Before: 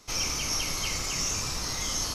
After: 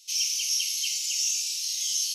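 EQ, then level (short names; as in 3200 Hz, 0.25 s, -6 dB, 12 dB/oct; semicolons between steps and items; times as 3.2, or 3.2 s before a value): elliptic high-pass 2800 Hz, stop band 60 dB; tilt -1.5 dB/oct; high shelf 8600 Hz +6.5 dB; +6.0 dB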